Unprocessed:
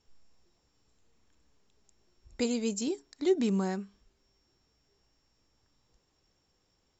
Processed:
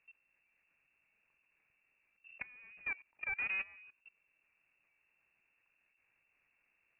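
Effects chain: tube stage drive 41 dB, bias 0.3; inverted band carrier 2700 Hz; level quantiser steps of 21 dB; gain +6 dB

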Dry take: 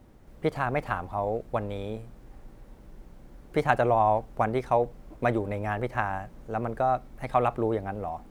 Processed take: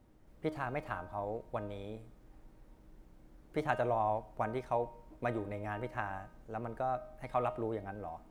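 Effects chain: resonator 310 Hz, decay 0.63 s, mix 70%; on a send: reverb RT60 0.70 s, pre-delay 40 ms, DRR 23 dB

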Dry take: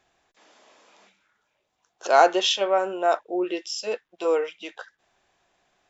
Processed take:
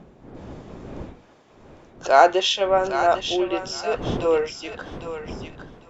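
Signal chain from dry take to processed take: wind noise 380 Hz -40 dBFS; high shelf 5200 Hz -5.5 dB; on a send: thinning echo 0.804 s, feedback 25%, high-pass 1000 Hz, level -6 dB; on the sum: gain +2.5 dB

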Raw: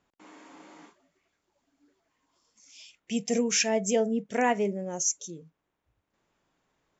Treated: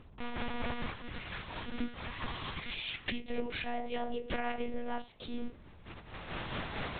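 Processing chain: spectral whitening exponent 0.6; recorder AGC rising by 22 dB/s; 3.78–4.6 resonant low shelf 150 Hz +10 dB, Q 3; FDN reverb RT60 0.38 s, low-frequency decay 0.9×, high-frequency decay 0.7×, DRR 7 dB; tremolo 4.4 Hz, depth 52%; buzz 60 Hz, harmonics 22, -64 dBFS -8 dB/oct; compressor 16:1, threshold -40 dBFS, peak gain reduction 19 dB; 0.74–3.27 bell 580 Hz -13 dB 0.53 oct; monotone LPC vocoder at 8 kHz 240 Hz; gain +9.5 dB

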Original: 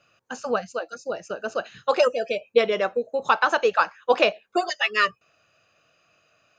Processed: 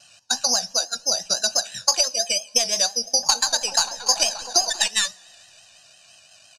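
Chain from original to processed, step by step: tracing distortion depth 0.077 ms; comb 1.2 ms, depth 77%; careless resampling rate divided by 8×, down filtered, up zero stuff; compressor 6:1, threshold -18 dBFS, peak gain reduction 16.5 dB; LPF 6600 Hz 24 dB/oct; high shelf 2900 Hz +12 dB; 2.84–4.88 repeats that get brighter 0.193 s, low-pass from 200 Hz, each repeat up 2 oct, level -6 dB; two-slope reverb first 0.42 s, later 3.7 s, from -18 dB, DRR 17 dB; vibrato 5.9 Hz 66 cents; bell 740 Hz +4 dB 0.57 oct

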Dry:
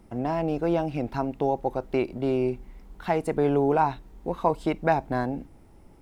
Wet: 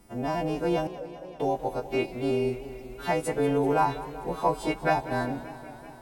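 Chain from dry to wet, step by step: frequency quantiser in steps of 2 st; 0.87–1.4 Butterworth band-pass 520 Hz, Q 5.5; warbling echo 0.193 s, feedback 76%, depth 111 cents, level -16 dB; gain -1.5 dB

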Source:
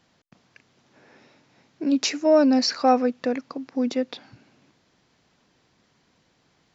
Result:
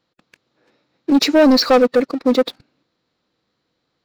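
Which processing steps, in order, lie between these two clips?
thirty-one-band EQ 315 Hz +5 dB, 500 Hz +7 dB, 1250 Hz +5 dB, 4000 Hz +8 dB, 6300 Hz -6 dB; sample leveller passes 3; time stretch by phase-locked vocoder 0.6×; gain -2 dB

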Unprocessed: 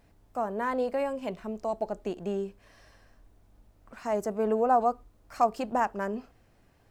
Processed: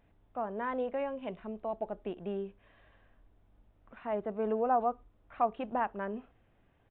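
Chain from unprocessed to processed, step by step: downsampling 8000 Hz; gain -5 dB

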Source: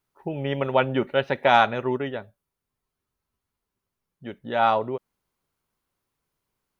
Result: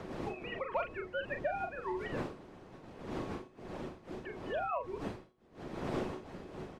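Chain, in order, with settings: sine-wave speech; wind noise 310 Hz -29 dBFS; high shelf 2400 Hz +9 dB; harmonic-percussive split harmonic -11 dB; low shelf 360 Hz -8.5 dB; resonator 370 Hz, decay 0.34 s, harmonics odd, mix 70%; soft clip -20.5 dBFS, distortion -25 dB; doubler 40 ms -6.5 dB; three-band squash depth 70%; gain +1.5 dB

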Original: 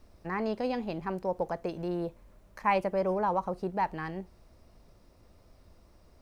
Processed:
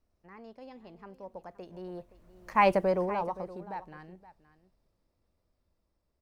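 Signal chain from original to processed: Doppler pass-by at 2.72, 12 m/s, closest 2.1 m; echo 0.521 s -16.5 dB; gain +5 dB

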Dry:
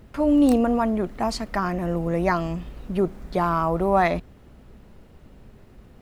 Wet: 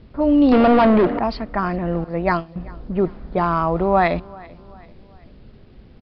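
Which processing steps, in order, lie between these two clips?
2.04–2.56 gate -22 dBFS, range -20 dB; low-pass opened by the level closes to 540 Hz, open at -16.5 dBFS; feedback echo 0.388 s, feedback 45%, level -23 dB; 0.52–1.19 overdrive pedal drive 29 dB, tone 1200 Hz, clips at -8.5 dBFS; requantised 10-bit, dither none; downsampling 11025 Hz; gain +3 dB

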